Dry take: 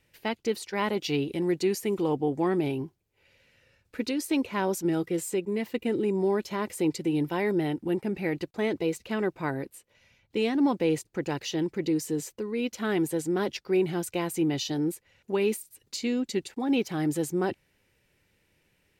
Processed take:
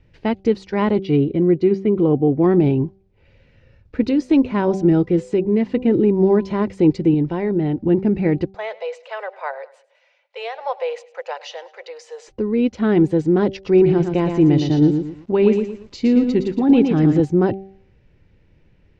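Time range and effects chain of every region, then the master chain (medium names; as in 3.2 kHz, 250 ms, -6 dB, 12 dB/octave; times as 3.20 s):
0.99–2.44 s: gate -42 dBFS, range -9 dB + distance through air 190 m + comb of notches 890 Hz
4.03–6.61 s: de-hum 252.3 Hz, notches 4 + upward compressor, threshold -35 dBFS
7.14–7.85 s: low-pass 6.9 kHz + compression 1.5:1, threshold -36 dBFS
8.55–12.28 s: steep high-pass 510 Hz 72 dB/octave + feedback delay 102 ms, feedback 41%, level -19.5 dB
13.50–17.20 s: brick-wall FIR low-pass 7.9 kHz + bit-crushed delay 115 ms, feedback 35%, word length 9-bit, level -6 dB
whole clip: low-pass 6.1 kHz 24 dB/octave; tilt EQ -3.5 dB/octave; de-hum 193.1 Hz, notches 4; trim +6 dB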